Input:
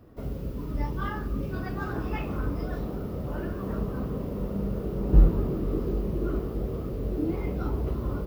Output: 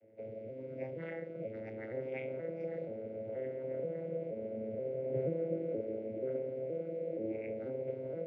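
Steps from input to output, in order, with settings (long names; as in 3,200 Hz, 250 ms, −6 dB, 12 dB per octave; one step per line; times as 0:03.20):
vocoder with an arpeggio as carrier minor triad, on A2, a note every 478 ms
pair of resonant band-passes 1,100 Hz, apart 2 octaves
level +11 dB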